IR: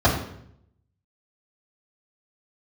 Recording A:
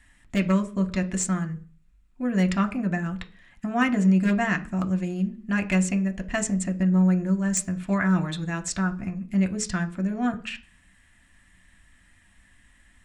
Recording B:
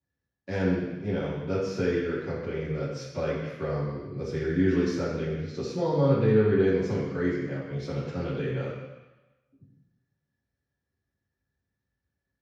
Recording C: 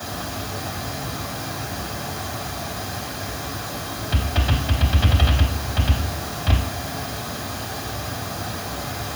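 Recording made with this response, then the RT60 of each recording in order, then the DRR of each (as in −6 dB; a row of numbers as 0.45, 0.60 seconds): C; 0.40, 1.1, 0.70 seconds; 5.0, −12.0, −6.5 decibels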